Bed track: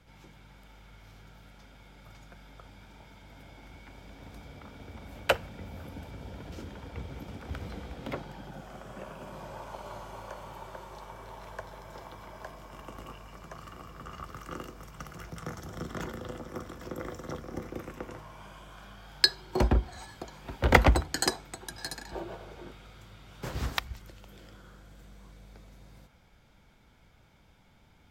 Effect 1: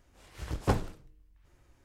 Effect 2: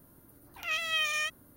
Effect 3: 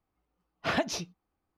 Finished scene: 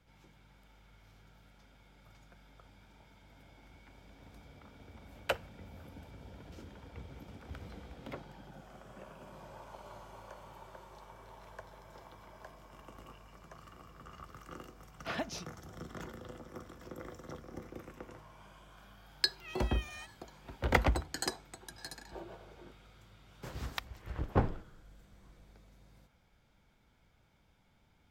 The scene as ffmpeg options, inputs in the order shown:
-filter_complex "[0:a]volume=-8dB[a];[3:a]aeval=exprs='val(0)+0.001*sin(2*PI*750*n/s)':c=same[b];[1:a]lowpass=2k[c];[b]atrim=end=1.57,asetpts=PTS-STARTPTS,volume=-9dB,afade=t=in:d=0.004:c=hsin,afade=t=out:st=1.566:d=0.004:c=hsin,adelay=14410[d];[2:a]atrim=end=1.56,asetpts=PTS-STARTPTS,volume=-17dB,afade=t=in:d=0.004:c=hsin,afade=t=out:st=1.556:d=0.004:c=hsin,adelay=18770[e];[c]atrim=end=1.84,asetpts=PTS-STARTPTS,volume=-1.5dB,afade=t=in:d=0.004:c=hsin,afade=t=out:st=1.836:d=0.004:c=hsin,adelay=23680[f];[a][d][e][f]amix=inputs=4:normalize=0"

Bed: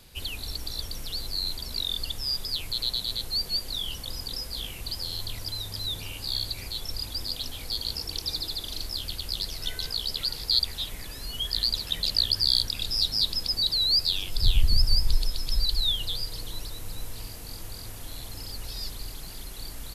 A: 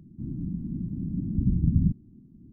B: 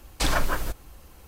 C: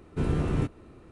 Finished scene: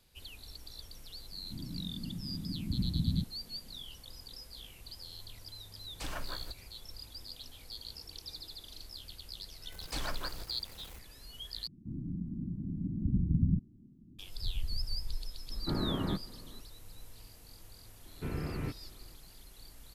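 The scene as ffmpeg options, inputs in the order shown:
-filter_complex "[1:a]asplit=2[a][b];[2:a]asplit=2[c][d];[3:a]asplit=2[e][f];[0:a]volume=-14.5dB[g];[d]aeval=exprs='val(0)+0.5*0.0266*sgn(val(0))':c=same[h];[e]highpass=f=200:t=q:w=0.5412,highpass=f=200:t=q:w=1.307,lowpass=f=2k:t=q:w=0.5176,lowpass=f=2k:t=q:w=0.7071,lowpass=f=2k:t=q:w=1.932,afreqshift=-99[i];[f]lowpass=f=2.3k:t=q:w=2.3[j];[g]asplit=2[k][l];[k]atrim=end=11.674[m];[b]atrim=end=2.52,asetpts=PTS-STARTPTS,volume=-6dB[n];[l]atrim=start=14.186[o];[a]atrim=end=2.52,asetpts=PTS-STARTPTS,volume=-9dB,afade=t=in:d=0.004:c=hsin,afade=t=out:st=2.516:d=0.004:c=hsin,adelay=1320[p];[c]atrim=end=1.27,asetpts=PTS-STARTPTS,volume=-16.5dB,afade=t=in:d=0.004:c=hsin,afade=t=out:st=1.266:d=0.004:c=hsin,adelay=5800[q];[h]atrim=end=1.27,asetpts=PTS-STARTPTS,volume=-15dB,afade=t=in:d=0.004:c=hsin,afade=t=out:st=1.266:d=0.004:c=hsin,adelay=9720[r];[i]atrim=end=1.11,asetpts=PTS-STARTPTS,volume=-1.5dB,afade=t=in:d=0.004:c=hsin,afade=t=out:st=1.106:d=0.004:c=hsin,adelay=15500[s];[j]atrim=end=1.11,asetpts=PTS-STARTPTS,volume=-10.5dB,afade=t=in:d=0.004:c=hsin,afade=t=out:st=1.106:d=0.004:c=hsin,adelay=18050[t];[m][n]acrossfade=d=0.004:c1=hsin:c2=hsin[u];[u][o]acrossfade=d=0.004:c1=hsin:c2=hsin[v];[v][p][q][r][s][t]amix=inputs=6:normalize=0"

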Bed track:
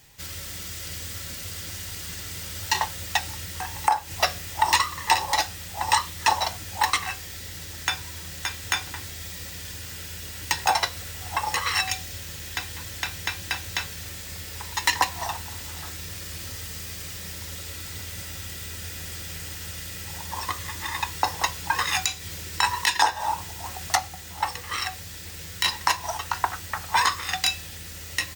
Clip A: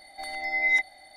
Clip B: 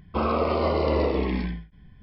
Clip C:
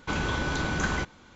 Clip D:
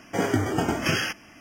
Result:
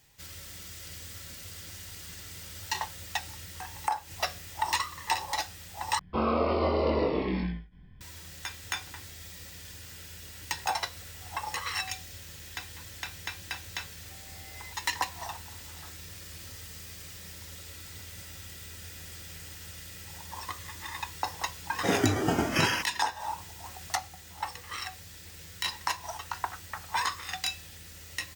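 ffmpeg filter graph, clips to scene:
-filter_complex "[0:a]volume=-8.5dB[a];[2:a]asplit=2[b][c];[c]adelay=22,volume=-3dB[d];[b][d]amix=inputs=2:normalize=0[e];[1:a]equalizer=f=2.5k:w=0.57:g=-11.5[f];[a]asplit=2[g][h];[g]atrim=end=5.994[i];[e]atrim=end=2.02,asetpts=PTS-STARTPTS,volume=-5dB[j];[h]atrim=start=8.006[k];[f]atrim=end=1.16,asetpts=PTS-STARTPTS,volume=-17.5dB,afade=t=in:d=0.004:c=hsin,afade=t=out:st=1.156:d=0.004:c=hsin,adelay=13920[l];[4:a]atrim=end=1.4,asetpts=PTS-STARTPTS,volume=-2dB,afade=t=in:d=0.004:c=hsin,afade=t=out:st=1.396:d=0.004:c=hsin,adelay=21700[m];[i][j]acrossfade=d=0.004:c1=hsin:c2=hsin[n];[n][k]acrossfade=d=0.004:c1=hsin:c2=hsin[o];[o][l][m]amix=inputs=3:normalize=0"

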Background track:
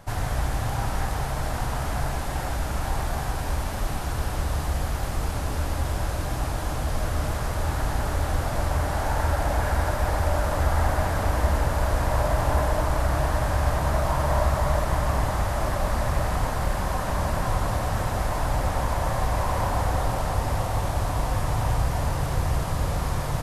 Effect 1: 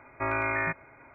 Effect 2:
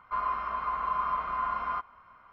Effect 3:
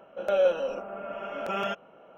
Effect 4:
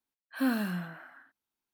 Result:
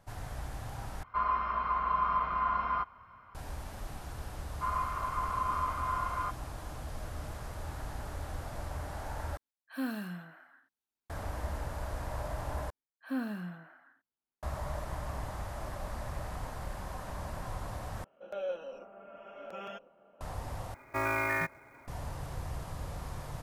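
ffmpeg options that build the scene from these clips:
-filter_complex "[2:a]asplit=2[a][b];[4:a]asplit=2[c][d];[0:a]volume=-14.5dB[e];[a]equalizer=f=90:w=0.73:g=9.5[f];[d]highshelf=f=2.6k:g=-9[g];[3:a]asplit=2[h][i];[i]adelay=1050,volume=-12dB,highshelf=f=4k:g=-23.6[j];[h][j]amix=inputs=2:normalize=0[k];[1:a]acrusher=bits=4:mode=log:mix=0:aa=0.000001[l];[e]asplit=6[m][n][o][p][q][r];[m]atrim=end=1.034[s];[f]atrim=end=2.32[t];[n]atrim=start=3.346:end=9.374[u];[c]atrim=end=1.73,asetpts=PTS-STARTPTS,volume=-7dB[v];[o]atrim=start=11.096:end=12.704[w];[g]atrim=end=1.73,asetpts=PTS-STARTPTS,volume=-6dB[x];[p]atrim=start=14.426:end=18.044[y];[k]atrim=end=2.17,asetpts=PTS-STARTPTS,volume=-13.5dB[z];[q]atrim=start=20.206:end=20.744[aa];[l]atrim=end=1.14,asetpts=PTS-STARTPTS,volume=-2.5dB[ab];[r]atrim=start=21.876[ac];[b]atrim=end=2.32,asetpts=PTS-STARTPTS,volume=-3dB,afade=t=in:d=0.004:c=hsin,afade=t=out:st=2.316:d=0.004:c=hsin,adelay=4500[ad];[s][t]acrossfade=d=0.004:c1=hsin:c2=hsin[ae];[ae][u]acrossfade=d=0.004:c1=hsin:c2=hsin[af];[af][v]acrossfade=d=0.004:c1=hsin:c2=hsin[ag];[ag][w]acrossfade=d=0.004:c1=hsin:c2=hsin[ah];[ah][x]acrossfade=d=0.004:c1=hsin:c2=hsin[ai];[ai][y]acrossfade=d=0.004:c1=hsin:c2=hsin[aj];[aj][z]acrossfade=d=0.004:c1=hsin:c2=hsin[ak];[ak][aa]acrossfade=d=0.004:c1=hsin:c2=hsin[al];[al][ab]acrossfade=d=0.004:c1=hsin:c2=hsin[am];[am][ac]acrossfade=d=0.004:c1=hsin:c2=hsin[an];[an][ad]amix=inputs=2:normalize=0"

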